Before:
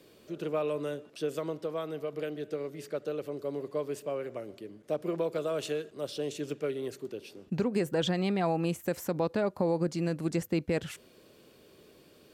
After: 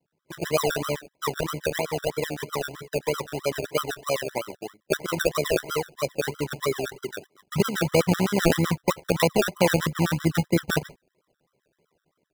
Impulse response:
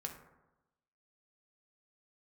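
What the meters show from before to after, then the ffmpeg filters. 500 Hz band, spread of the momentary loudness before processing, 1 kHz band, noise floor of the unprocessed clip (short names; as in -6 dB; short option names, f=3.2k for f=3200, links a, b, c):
+5.5 dB, 10 LU, +9.0 dB, -59 dBFS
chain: -filter_complex "[0:a]lowpass=f=1.3k:w=0.5412,lowpass=f=1.3k:w=1.3066,agate=range=-20dB:threshold=-45dB:ratio=16:detection=peak,equalizer=f=150:w=1.9:g=13.5,acrossover=split=390[a][b];[b]dynaudnorm=f=210:g=3:m=12dB[c];[a][c]amix=inputs=2:normalize=0,acrusher=samples=34:mix=1:aa=0.000001:lfo=1:lforange=20.4:lforate=3.1,tremolo=f=72:d=0.462,afftfilt=real='re*gt(sin(2*PI*7.8*pts/sr)*(1-2*mod(floor(b*sr/1024/1000),2)),0)':imag='im*gt(sin(2*PI*7.8*pts/sr)*(1-2*mod(floor(b*sr/1024/1000),2)),0)':win_size=1024:overlap=0.75,volume=2dB"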